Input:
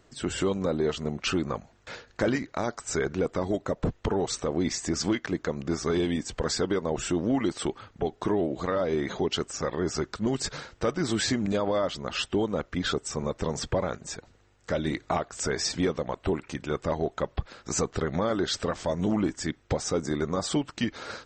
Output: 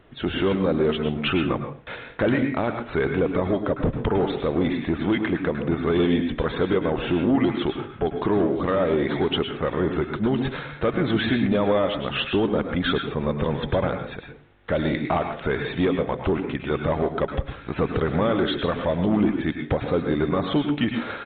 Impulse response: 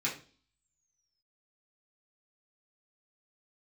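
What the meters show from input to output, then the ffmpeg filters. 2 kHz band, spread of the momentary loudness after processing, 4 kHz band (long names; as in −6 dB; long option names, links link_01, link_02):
+6.0 dB, 6 LU, +2.0 dB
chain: -filter_complex "[0:a]asoftclip=type=tanh:threshold=-19.5dB,asplit=2[link_01][link_02];[1:a]atrim=start_sample=2205,adelay=101[link_03];[link_02][link_03]afir=irnorm=-1:irlink=0,volume=-11dB[link_04];[link_01][link_04]amix=inputs=2:normalize=0,aresample=8000,aresample=44100,volume=6dB"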